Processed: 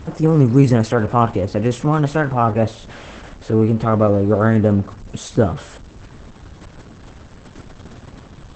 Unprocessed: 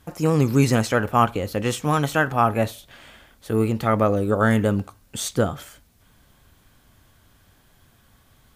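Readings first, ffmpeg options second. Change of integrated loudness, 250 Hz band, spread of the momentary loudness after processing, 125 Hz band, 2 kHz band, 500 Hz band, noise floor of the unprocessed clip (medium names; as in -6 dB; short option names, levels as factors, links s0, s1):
+5.0 dB, +6.0 dB, 17 LU, +6.5 dB, -2.0 dB, +5.0 dB, -58 dBFS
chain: -af "aeval=exprs='val(0)+0.5*0.0224*sgn(val(0))':c=same,tiltshelf=f=1400:g=6.5" -ar 48000 -c:a libopus -b:a 10k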